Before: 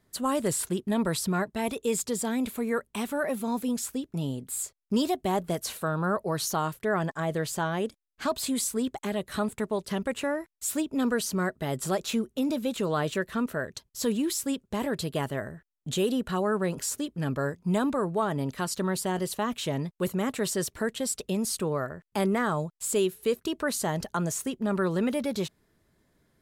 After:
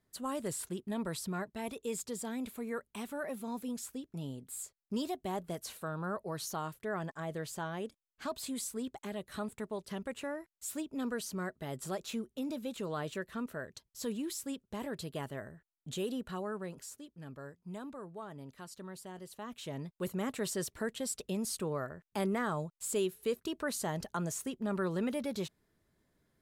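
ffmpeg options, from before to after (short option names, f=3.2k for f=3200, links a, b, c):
-af "volume=1dB,afade=t=out:st=16.21:d=0.79:silence=0.398107,afade=t=in:st=19.3:d=0.93:silence=0.281838"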